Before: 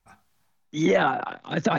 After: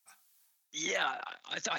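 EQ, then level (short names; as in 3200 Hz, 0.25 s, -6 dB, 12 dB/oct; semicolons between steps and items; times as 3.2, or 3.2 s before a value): differentiator; +6.0 dB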